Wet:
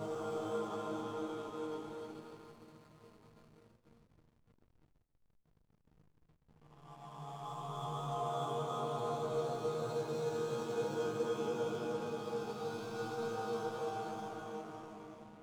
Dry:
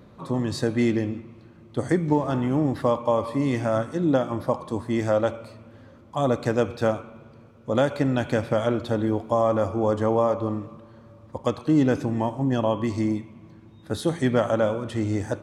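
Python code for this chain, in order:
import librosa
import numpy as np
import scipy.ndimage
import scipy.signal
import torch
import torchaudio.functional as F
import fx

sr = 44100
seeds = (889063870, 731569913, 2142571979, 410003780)

p1 = fx.level_steps(x, sr, step_db=17)
p2 = x + F.gain(torch.from_numpy(p1), -2.5).numpy()
p3 = fx.high_shelf(p2, sr, hz=5500.0, db=5.0)
p4 = fx.paulstretch(p3, sr, seeds[0], factor=7.8, window_s=0.5, from_s=5.14)
p5 = fx.peak_eq(p4, sr, hz=2500.0, db=3.5, octaves=2.3)
p6 = fx.fixed_phaser(p5, sr, hz=370.0, stages=8)
p7 = fx.resonator_bank(p6, sr, root=51, chord='sus4', decay_s=0.49)
p8 = p7 + fx.echo_single(p7, sr, ms=306, db=-6.0, dry=0)
p9 = fx.backlash(p8, sr, play_db=-55.5)
p10 = fx.echo_warbled(p9, sr, ms=135, feedback_pct=57, rate_hz=2.8, cents=205, wet_db=-15.5)
y = F.gain(torch.from_numpy(p10), 5.5).numpy()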